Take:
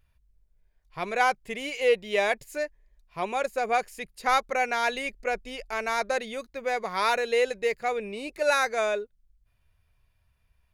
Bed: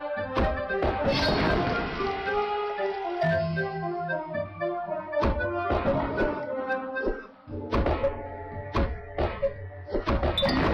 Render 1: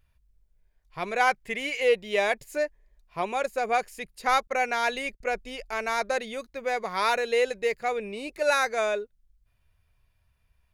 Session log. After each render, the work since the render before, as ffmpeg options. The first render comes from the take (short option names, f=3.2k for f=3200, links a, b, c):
-filter_complex "[0:a]asettb=1/sr,asplit=3[a][b][c];[a]atrim=end=1.274[d];[b]atrim=start=1.27:end=1.83,asetpts=PTS-STARTPTS,afade=t=in:d=0.004:c=qsin,afade=t=out:st=0.556:d=0.004:c=qsin,equalizer=f=1.9k:t=o:w=0.77:g=6.5[e];[c]atrim=start=1.826[f];[d][e]acrossfade=d=0.004:c1=hsin:c2=qsin[g];[g][f]acrossfade=d=0.004:c1=qsin:c2=hsin,asettb=1/sr,asplit=3[h][i][j];[h]atrim=end=2.434[k];[i]atrim=start=2.43:end=3.22,asetpts=PTS-STARTPTS,afade=t=in:d=0.004:c=qsin,afade=t=out:st=0.786:d=0.004:c=qsin,equalizer=f=540:w=0.45:g=3.5[l];[j]atrim=start=3.216[m];[k][l]acrossfade=d=0.004:c1=hsin:c2=qsin[n];[n][m]acrossfade=d=0.004:c1=qsin:c2=hsin,asettb=1/sr,asplit=3[o][p][q];[o]atrim=end=4.474[r];[p]atrim=start=4.47:end=5.22,asetpts=PTS-STARTPTS,afade=t=in:d=0.004:c=qsin,afade=t=out:st=0.746:d=0.004:c=qsin,agate=range=-33dB:threshold=-48dB:ratio=16:release=100:detection=peak[s];[q]atrim=start=5.216[t];[r][s]acrossfade=d=0.004:c1=hsin:c2=qsin[u];[u][t]acrossfade=d=0.004:c1=qsin:c2=hsin"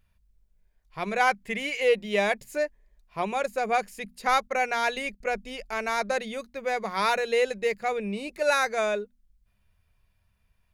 -af "equalizer=f=200:t=o:w=0.21:g=11,bandreject=f=60:t=h:w=6,bandreject=f=120:t=h:w=6,bandreject=f=180:t=h:w=6,bandreject=f=240:t=h:w=6"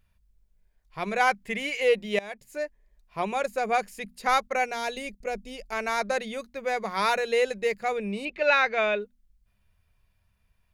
-filter_complex "[0:a]asettb=1/sr,asplit=3[a][b][c];[a]atrim=end=4.644[d];[b]atrim=start=4.64:end=5.72,asetpts=PTS-STARTPTS,afade=t=in:d=0.004:c=qsin,afade=t=out:st=1.076:d=0.004:c=qsin,equalizer=f=1.5k:w=0.69:g=-8[e];[c]atrim=start=5.716[f];[d][e]acrossfade=d=0.004:c1=hsin:c2=qsin[g];[g][f]acrossfade=d=0.004:c1=qsin:c2=hsin,asettb=1/sr,asplit=3[h][i][j];[h]atrim=end=8.254[k];[i]atrim=start=8.25:end=9.02,asetpts=PTS-STARTPTS,afade=t=in:d=0.004:c=qsin,afade=t=out:st=0.766:d=0.004:c=qsin,lowpass=f=2.9k:t=q:w=2.5[l];[j]atrim=start=9.016[m];[k][l]acrossfade=d=0.004:c1=hsin:c2=qsin[n];[n][m]acrossfade=d=0.004:c1=qsin:c2=hsin,asplit=2[o][p];[o]atrim=end=2.19,asetpts=PTS-STARTPTS,afade=t=out:st=2.186:d=0.004:c=hsin:silence=0.0891251[q];[p]atrim=start=2.19,asetpts=PTS-STARTPTS,afade=t=in:d=1.1:c=qsin:silence=0.0891251[r];[q][r]concat=n=2:v=0:a=1"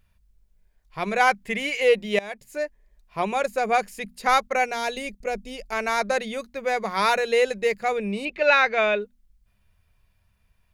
-af "volume=3.5dB"